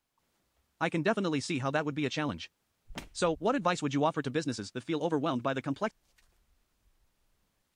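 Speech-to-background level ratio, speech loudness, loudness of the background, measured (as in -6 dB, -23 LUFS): 17.0 dB, -32.0 LUFS, -49.0 LUFS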